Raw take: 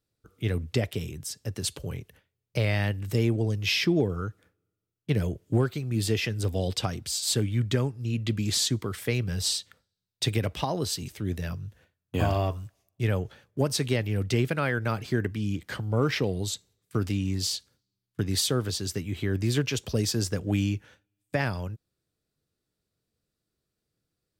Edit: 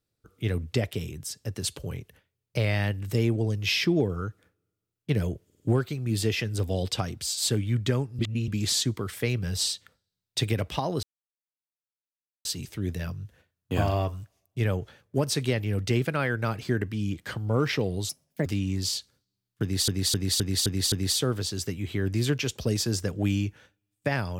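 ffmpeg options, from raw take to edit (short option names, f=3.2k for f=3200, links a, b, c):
-filter_complex "[0:a]asplit=14[a][b][c][d][e][f][g][h][i][j][k][l][m][n];[a]atrim=end=5.502[o];[b]atrim=start=5.448:end=5.502[p];[c]atrim=start=5.448:end=5.502[q];[d]atrim=start=5.448:end=8.042[r];[e]atrim=start=8.038:end=8.332,asetpts=PTS-STARTPTS,areverse[s];[f]atrim=start=8.328:end=10.88,asetpts=PTS-STARTPTS,afade=t=out:st=2.548:d=0.004:c=hsin,apad=pad_dur=1.42[t];[g]atrim=start=10.88:end=16.524,asetpts=PTS-STARTPTS,afade=t=in:d=0.004:c=hsin[u];[h]atrim=start=16.52:end=17.04,asetpts=PTS-STARTPTS,asetrate=62181,aresample=44100[v];[i]atrim=start=17.036:end=18.462[w];[j]atrim=start=18.198:end=18.462[x];[k]atrim=start=18.198:end=18.462[y];[l]atrim=start=18.198:end=18.462[z];[m]atrim=start=18.198:end=18.462[aa];[n]atrim=start=18.198[ab];[o][p]acrossfade=d=0.004:c1=hsin:c2=hsin[ac];[ac][q]acrossfade=d=0.004:c1=hsin:c2=hsin[ad];[ad][r]acrossfade=d=0.004:c1=hsin:c2=hsin[ae];[ae][s]acrossfade=d=0.004:c1=hsin:c2=hsin[af];[t][u]concat=n=2:v=0:a=1[ag];[af][ag]acrossfade=d=0.004:c1=hsin:c2=hsin[ah];[ah][v]acrossfade=d=0.004:c1=hsin:c2=hsin[ai];[ai][w]acrossfade=d=0.004:c1=hsin:c2=hsin[aj];[aj][x]acrossfade=d=0.004:c1=hsin:c2=hsin[ak];[ak][y]acrossfade=d=0.004:c1=hsin:c2=hsin[al];[al][z]acrossfade=d=0.004:c1=hsin:c2=hsin[am];[am][aa]acrossfade=d=0.004:c1=hsin:c2=hsin[an];[an][ab]acrossfade=d=0.004:c1=hsin:c2=hsin"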